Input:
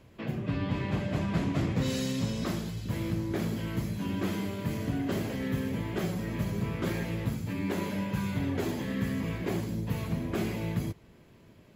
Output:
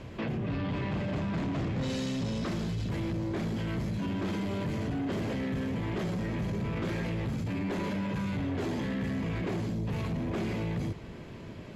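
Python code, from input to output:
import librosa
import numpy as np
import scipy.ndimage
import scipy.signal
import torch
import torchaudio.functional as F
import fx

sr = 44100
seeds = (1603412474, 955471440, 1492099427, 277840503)

p1 = fx.over_compress(x, sr, threshold_db=-41.0, ratio=-1.0)
p2 = x + (p1 * librosa.db_to_amplitude(1.5))
p3 = 10.0 ** (-27.0 / 20.0) * np.tanh(p2 / 10.0 ** (-27.0 / 20.0))
y = fx.air_absorb(p3, sr, metres=62.0)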